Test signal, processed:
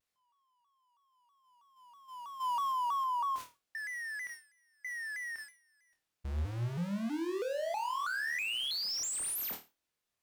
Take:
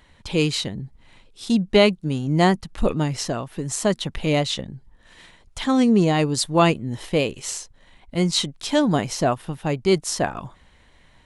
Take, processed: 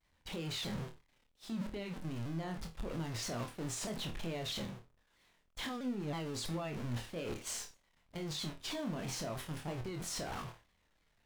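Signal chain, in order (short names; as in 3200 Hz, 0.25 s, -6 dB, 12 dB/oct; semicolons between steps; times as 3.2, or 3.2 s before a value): zero-crossing step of -19 dBFS; gate -22 dBFS, range -49 dB; high shelf 7900 Hz -8.5 dB; compressor 5:1, threshold -27 dBFS; limiter -26 dBFS; flutter echo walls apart 4.3 m, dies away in 0.26 s; shaped vibrato saw down 3.1 Hz, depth 160 cents; gain -8.5 dB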